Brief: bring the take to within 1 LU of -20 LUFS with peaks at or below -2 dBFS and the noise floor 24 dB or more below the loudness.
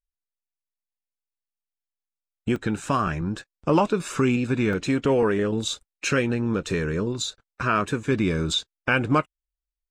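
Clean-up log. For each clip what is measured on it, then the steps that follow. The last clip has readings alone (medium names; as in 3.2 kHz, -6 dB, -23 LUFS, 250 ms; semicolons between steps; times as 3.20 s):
dropouts 2; longest dropout 2.4 ms; loudness -24.5 LUFS; peak level -7.5 dBFS; loudness target -20.0 LUFS
-> interpolate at 2.56/4.73 s, 2.4 ms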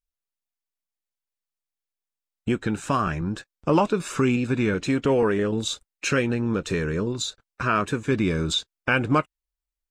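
dropouts 0; loudness -24.5 LUFS; peak level -7.5 dBFS; loudness target -20.0 LUFS
-> trim +4.5 dB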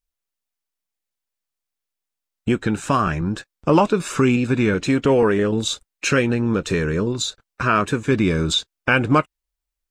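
loudness -20.0 LUFS; peak level -3.0 dBFS; noise floor -84 dBFS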